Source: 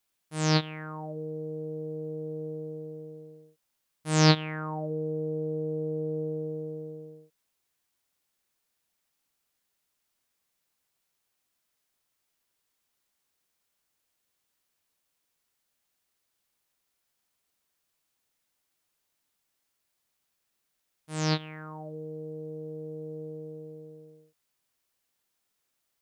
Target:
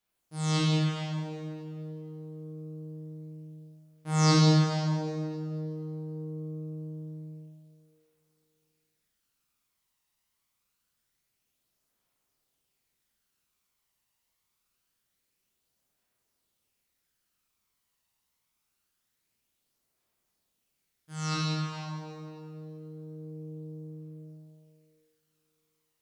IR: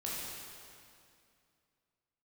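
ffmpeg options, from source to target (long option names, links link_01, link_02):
-filter_complex "[0:a]aphaser=in_gain=1:out_gain=1:delay=1.1:decay=0.48:speed=0.25:type=triangular[link_01];[1:a]atrim=start_sample=2205,asetrate=48510,aresample=44100[link_02];[link_01][link_02]afir=irnorm=-1:irlink=0,volume=-3dB"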